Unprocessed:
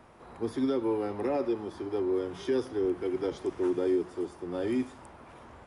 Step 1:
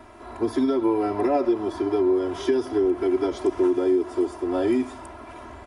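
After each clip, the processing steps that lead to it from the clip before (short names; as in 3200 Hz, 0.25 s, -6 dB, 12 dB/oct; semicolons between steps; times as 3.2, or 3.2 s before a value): compressor, threshold -29 dBFS, peak gain reduction 6.5 dB; dynamic EQ 770 Hz, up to +5 dB, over -51 dBFS, Q 1.2; comb 3 ms, depth 97%; gain +6 dB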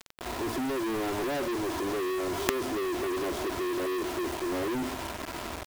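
high shelf 2700 Hz -11 dB; companded quantiser 2-bit; gain -5 dB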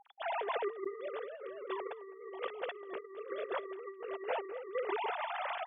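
sine-wave speech; echo 0.212 s -4 dB; negative-ratio compressor -35 dBFS, ratio -0.5; gain -3.5 dB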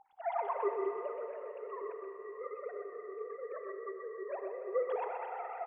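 sine-wave speech; echo 0.127 s -6.5 dB; on a send at -6 dB: reverb RT60 3.6 s, pre-delay 32 ms; on the sum: gain -1 dB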